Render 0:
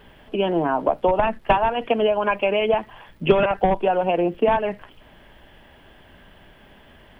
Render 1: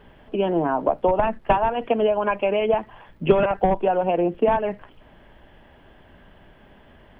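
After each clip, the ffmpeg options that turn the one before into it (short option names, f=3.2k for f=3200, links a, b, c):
-af "highshelf=f=2.7k:g=-11"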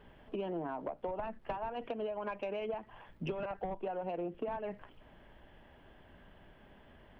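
-af "acompressor=threshold=-26dB:ratio=8,asoftclip=type=tanh:threshold=-19dB,volume=-8dB"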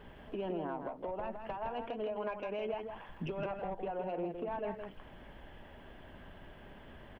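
-filter_complex "[0:a]alimiter=level_in=12dB:limit=-24dB:level=0:latency=1:release=392,volume=-12dB,asplit=2[a][b];[b]aecho=0:1:163:0.473[c];[a][c]amix=inputs=2:normalize=0,volume=5dB"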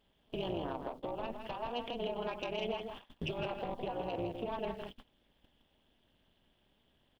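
-af "agate=range=-21dB:threshold=-46dB:ratio=16:detection=peak,tremolo=f=240:d=0.889,highshelf=f=2.6k:t=q:w=1.5:g=12,volume=4dB"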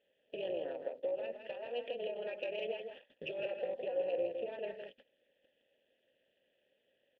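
-filter_complex "[0:a]asplit=3[a][b][c];[a]bandpass=f=530:t=q:w=8,volume=0dB[d];[b]bandpass=f=1.84k:t=q:w=8,volume=-6dB[e];[c]bandpass=f=2.48k:t=q:w=8,volume=-9dB[f];[d][e][f]amix=inputs=3:normalize=0,volume=9dB"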